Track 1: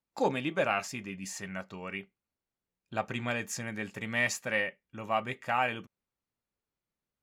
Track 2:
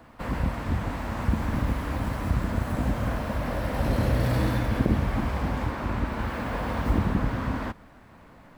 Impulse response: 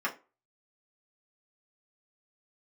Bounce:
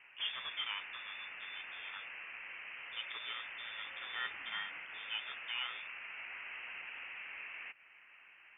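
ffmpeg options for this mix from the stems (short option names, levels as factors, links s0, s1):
-filter_complex "[0:a]volume=0.251[s0];[1:a]highpass=f=1100:w=0.5412,highpass=f=1100:w=1.3066,acompressor=threshold=0.00501:ratio=2.5,volume=0.891[s1];[s0][s1]amix=inputs=2:normalize=0,lowpass=f=3100:t=q:w=0.5098,lowpass=f=3100:t=q:w=0.6013,lowpass=f=3100:t=q:w=0.9,lowpass=f=3100:t=q:w=2.563,afreqshift=-3700"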